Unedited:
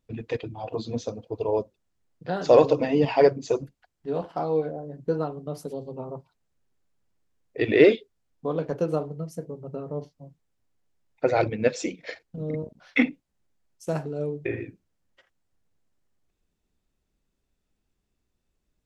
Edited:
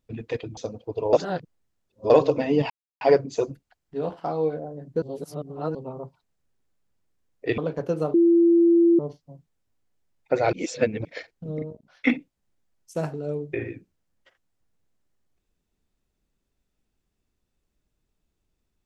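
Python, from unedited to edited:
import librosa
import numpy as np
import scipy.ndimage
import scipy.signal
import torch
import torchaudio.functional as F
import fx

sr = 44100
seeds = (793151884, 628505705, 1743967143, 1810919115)

y = fx.edit(x, sr, fx.cut(start_s=0.57, length_s=0.43),
    fx.reverse_span(start_s=1.56, length_s=0.97),
    fx.insert_silence(at_s=3.13, length_s=0.31),
    fx.reverse_span(start_s=5.14, length_s=0.73),
    fx.cut(start_s=7.7, length_s=0.8),
    fx.bleep(start_s=9.06, length_s=0.85, hz=339.0, db=-13.5),
    fx.reverse_span(start_s=11.45, length_s=0.52),
    fx.clip_gain(start_s=12.54, length_s=0.45, db=-5.0), tone=tone)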